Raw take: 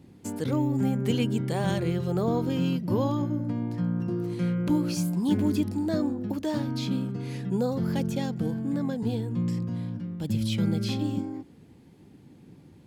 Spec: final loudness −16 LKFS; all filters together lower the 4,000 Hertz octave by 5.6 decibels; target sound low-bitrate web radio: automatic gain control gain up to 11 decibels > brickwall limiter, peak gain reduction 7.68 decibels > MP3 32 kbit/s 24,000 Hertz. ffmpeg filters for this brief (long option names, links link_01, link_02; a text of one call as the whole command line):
ffmpeg -i in.wav -af "equalizer=frequency=4000:width_type=o:gain=-7.5,dynaudnorm=maxgain=11dB,alimiter=limit=-21dB:level=0:latency=1,volume=14.5dB" -ar 24000 -c:a libmp3lame -b:a 32k out.mp3